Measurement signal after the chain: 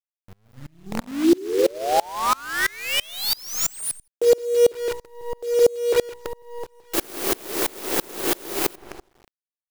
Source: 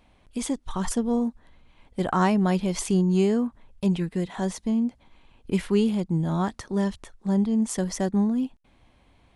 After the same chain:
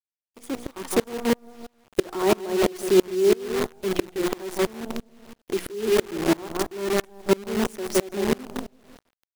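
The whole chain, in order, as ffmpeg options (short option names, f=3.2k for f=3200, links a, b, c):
-filter_complex "[0:a]acrossover=split=930[a][b];[a]highpass=f=360:t=q:w=4.2[c];[b]asoftclip=type=tanh:threshold=-24dB[d];[c][d]amix=inputs=2:normalize=0,aexciter=amount=2.6:drive=1.8:freq=10k,bandreject=f=60:t=h:w=6,bandreject=f=120:t=h:w=6,bandreject=f=180:t=h:w=6,bandreject=f=240:t=h:w=6,bandreject=f=300:t=h:w=6,bandreject=f=360:t=h:w=6,bandreject=f=420:t=h:w=6,bandreject=f=480:t=h:w=6,asplit=2[e][f];[f]adelay=165,lowpass=f=1.8k:p=1,volume=-5dB,asplit=2[g][h];[h]adelay=165,lowpass=f=1.8k:p=1,volume=0.41,asplit=2[i][j];[j]adelay=165,lowpass=f=1.8k:p=1,volume=0.41,asplit=2[k][l];[l]adelay=165,lowpass=f=1.8k:p=1,volume=0.41,asplit=2[m][n];[n]adelay=165,lowpass=f=1.8k:p=1,volume=0.41[o];[e][g][i][k][m][o]amix=inputs=6:normalize=0,acrusher=bits=5:dc=4:mix=0:aa=0.000001,alimiter=level_in=12dB:limit=-1dB:release=50:level=0:latency=1,aeval=exprs='val(0)*pow(10,-29*if(lt(mod(-3*n/s,1),2*abs(-3)/1000),1-mod(-3*n/s,1)/(2*abs(-3)/1000),(mod(-3*n/s,1)-2*abs(-3)/1000)/(1-2*abs(-3)/1000))/20)':c=same,volume=-5dB"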